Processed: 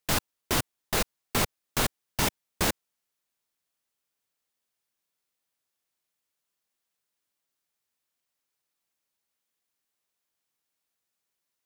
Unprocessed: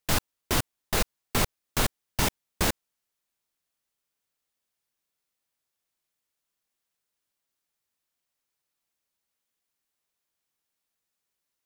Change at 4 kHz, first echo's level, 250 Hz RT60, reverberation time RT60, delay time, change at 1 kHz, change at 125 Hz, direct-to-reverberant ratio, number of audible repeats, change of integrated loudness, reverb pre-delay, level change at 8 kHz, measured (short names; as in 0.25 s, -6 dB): 0.0 dB, none, none, none, none, 0.0 dB, -2.5 dB, none, none, -0.5 dB, none, 0.0 dB